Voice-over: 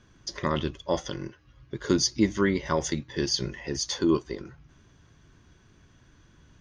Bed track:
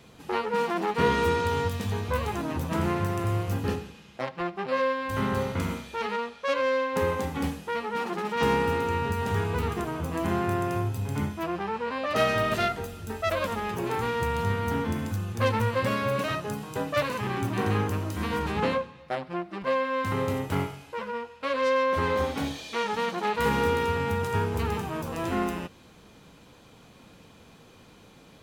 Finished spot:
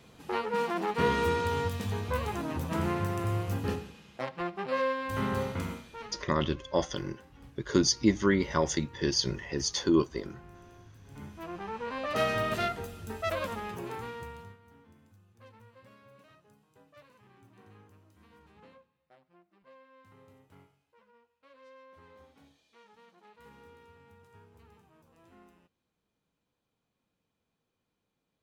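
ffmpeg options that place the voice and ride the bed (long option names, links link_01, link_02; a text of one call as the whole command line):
ffmpeg -i stem1.wav -i stem2.wav -filter_complex "[0:a]adelay=5850,volume=-1dB[link_01];[1:a]volume=18.5dB,afade=type=out:start_time=5.43:duration=0.83:silence=0.0707946,afade=type=in:start_time=11.02:duration=0.97:silence=0.0794328,afade=type=out:start_time=13.32:duration=1.26:silence=0.0501187[link_02];[link_01][link_02]amix=inputs=2:normalize=0" out.wav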